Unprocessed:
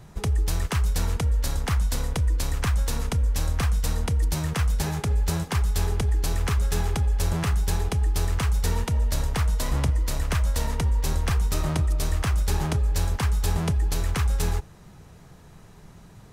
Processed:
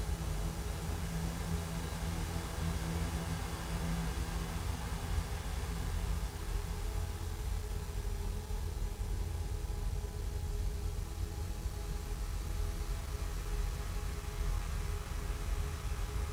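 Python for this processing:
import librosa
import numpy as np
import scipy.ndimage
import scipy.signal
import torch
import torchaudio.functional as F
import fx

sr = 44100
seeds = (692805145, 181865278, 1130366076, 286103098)

y = fx.spec_steps(x, sr, hold_ms=50)
y = fx.level_steps(y, sr, step_db=19)
y = fx.paulstretch(y, sr, seeds[0], factor=12.0, window_s=1.0, from_s=5.21)
y = np.sign(y) * np.maximum(np.abs(y) - 10.0 ** (-57.0 / 20.0), 0.0)
y = y * 10.0 ** (2.0 / 20.0)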